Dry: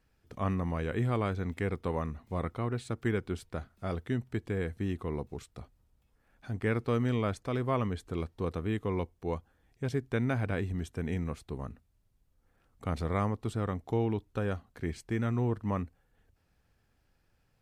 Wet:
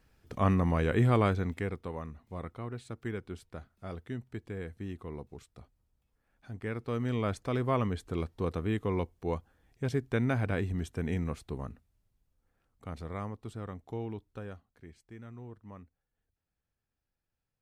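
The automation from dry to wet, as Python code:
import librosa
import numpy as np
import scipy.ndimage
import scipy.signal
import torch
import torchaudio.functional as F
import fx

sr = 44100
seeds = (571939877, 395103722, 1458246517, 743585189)

y = fx.gain(x, sr, db=fx.line((1.27, 5.0), (1.9, -6.5), (6.76, -6.5), (7.37, 1.0), (11.48, 1.0), (12.86, -8.0), (14.29, -8.0), (14.88, -16.5)))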